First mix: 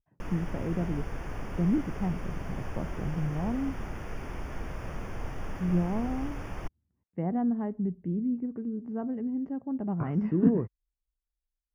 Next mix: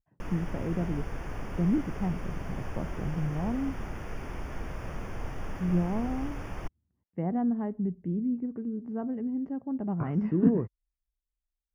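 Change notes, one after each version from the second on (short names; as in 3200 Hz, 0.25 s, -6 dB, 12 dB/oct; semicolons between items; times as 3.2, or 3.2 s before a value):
none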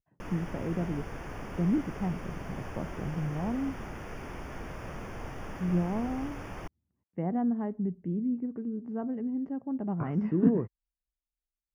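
master: add low shelf 75 Hz -8.5 dB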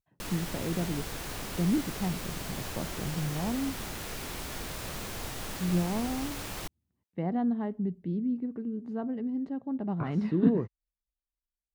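master: remove running mean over 11 samples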